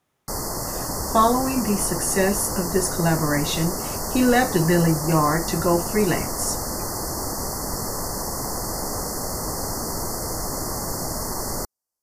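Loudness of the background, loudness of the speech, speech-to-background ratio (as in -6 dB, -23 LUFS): -27.0 LUFS, -22.0 LUFS, 5.0 dB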